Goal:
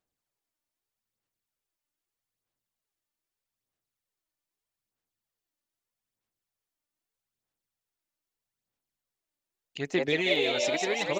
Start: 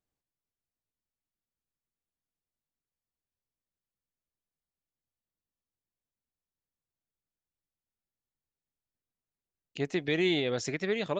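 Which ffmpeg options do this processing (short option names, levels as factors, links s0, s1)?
-filter_complex "[0:a]lowshelf=f=270:g=-10,asplit=2[s0][s1];[s1]asplit=8[s2][s3][s4][s5][s6][s7][s8][s9];[s2]adelay=181,afreqshift=110,volume=0.708[s10];[s3]adelay=362,afreqshift=220,volume=0.412[s11];[s4]adelay=543,afreqshift=330,volume=0.237[s12];[s5]adelay=724,afreqshift=440,volume=0.138[s13];[s6]adelay=905,afreqshift=550,volume=0.0804[s14];[s7]adelay=1086,afreqshift=660,volume=0.0462[s15];[s8]adelay=1267,afreqshift=770,volume=0.0269[s16];[s9]adelay=1448,afreqshift=880,volume=0.0157[s17];[s10][s11][s12][s13][s14][s15][s16][s17]amix=inputs=8:normalize=0[s18];[s0][s18]amix=inputs=2:normalize=0,aphaser=in_gain=1:out_gain=1:delay=3.4:decay=0.48:speed=0.8:type=sinusoidal,volume=1.19"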